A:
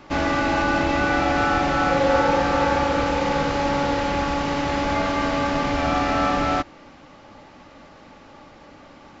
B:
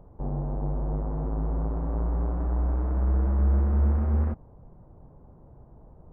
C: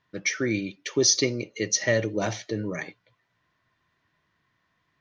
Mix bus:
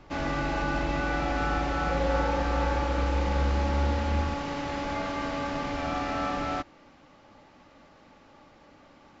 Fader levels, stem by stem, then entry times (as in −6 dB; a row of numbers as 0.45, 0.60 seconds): −9.0 dB, −5.0 dB, muted; 0.00 s, 0.00 s, muted